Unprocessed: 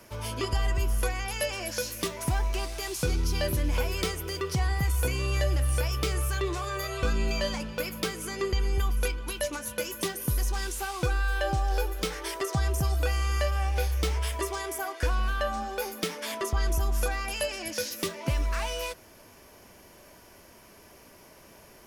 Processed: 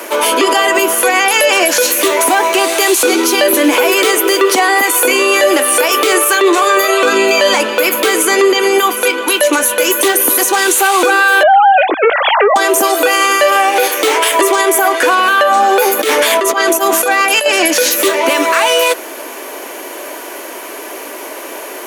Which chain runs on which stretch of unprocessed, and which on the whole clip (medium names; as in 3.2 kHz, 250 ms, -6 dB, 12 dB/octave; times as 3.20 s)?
11.43–12.56 s: formants replaced by sine waves + loudspeaker Doppler distortion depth 0.17 ms
15.99–17.46 s: high-pass 82 Hz 24 dB/octave + band-stop 950 Hz, Q 20 + compressor with a negative ratio -37 dBFS
whole clip: steep high-pass 280 Hz 48 dB/octave; peaking EQ 5.2 kHz -10 dB 0.35 oct; loudness maximiser +28.5 dB; trim -1 dB